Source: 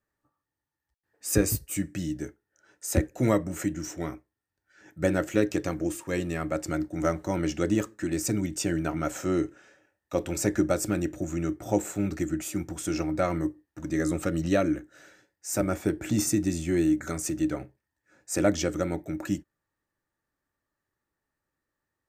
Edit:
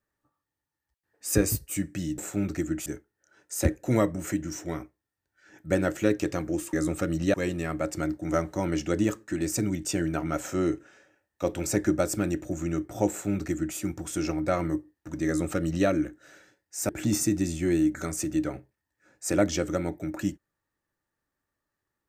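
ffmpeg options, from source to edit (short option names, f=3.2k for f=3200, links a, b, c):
-filter_complex "[0:a]asplit=6[a][b][c][d][e][f];[a]atrim=end=2.182[g];[b]atrim=start=11.798:end=12.482[h];[c]atrim=start=2.178:end=6.052[i];[d]atrim=start=13.968:end=14.582[j];[e]atrim=start=6.048:end=15.602[k];[f]atrim=start=15.948[l];[g][h]acrossfade=d=0.004:c1=hsin:c2=hsin[m];[m][i]acrossfade=d=0.004:c1=hsin:c2=hsin[n];[n][j]acrossfade=d=0.004:c1=hsin:c2=hsin[o];[o][k]acrossfade=d=0.004:c1=hsin:c2=hsin[p];[p][l]acrossfade=d=0.004:c1=hsin:c2=hsin"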